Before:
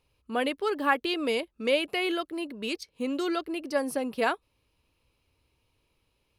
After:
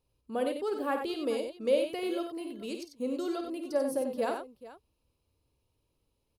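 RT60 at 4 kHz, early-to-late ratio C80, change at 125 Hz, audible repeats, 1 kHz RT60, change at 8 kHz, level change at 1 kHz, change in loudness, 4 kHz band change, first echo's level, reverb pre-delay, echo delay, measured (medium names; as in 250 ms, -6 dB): no reverb, no reverb, no reading, 3, no reverb, -3.5 dB, -6.5 dB, -3.5 dB, -10.0 dB, -9.0 dB, no reverb, 52 ms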